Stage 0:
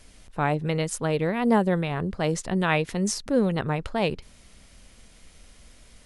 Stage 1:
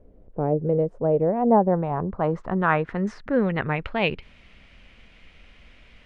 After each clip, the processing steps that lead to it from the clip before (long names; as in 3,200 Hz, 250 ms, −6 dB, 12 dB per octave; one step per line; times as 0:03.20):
low-pass filter sweep 490 Hz → 2,600 Hz, 0:00.68–0:04.03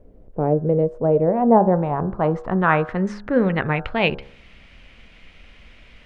hum removal 68.6 Hz, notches 25
level +4 dB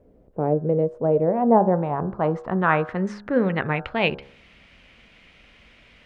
high-pass filter 99 Hz 6 dB per octave
level −2 dB